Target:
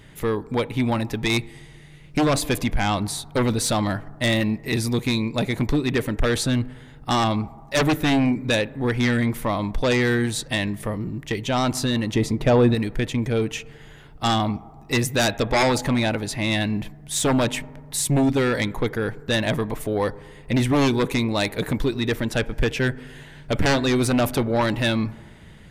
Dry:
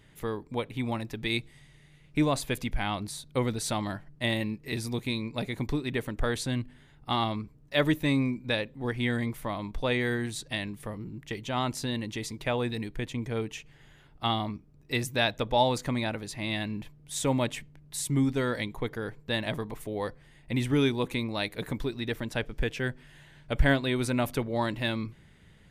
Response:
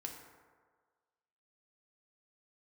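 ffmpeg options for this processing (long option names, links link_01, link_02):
-filter_complex "[0:a]asplit=2[link_01][link_02];[1:a]atrim=start_sample=2205,asetrate=40572,aresample=44100,lowpass=2200[link_03];[link_02][link_03]afir=irnorm=-1:irlink=0,volume=-14dB[link_04];[link_01][link_04]amix=inputs=2:normalize=0,aeval=exprs='0.355*sin(PI/2*3.98*val(0)/0.355)':channel_layout=same,asettb=1/sr,asplit=3[link_05][link_06][link_07];[link_05]atrim=end=12.144[link_08];[link_06]atrim=start=12.14:end=12.75,asetpts=PTS-STARTPTS,afade=type=in:duration=0.004:curve=qsin,afade=type=out:start_time=0.606:duration=0.004:curve=qsin,tiltshelf=frequency=1400:gain=6[link_09];[link_07]atrim=start=12.746[link_10];[link_08][link_09]acrossfade=duration=0.004:curve1=hsin:curve2=qsin[link_11];[link_11][link_10]acrossfade=duration=0.004:curve1=qsin:curve2=hsin,volume=-6dB"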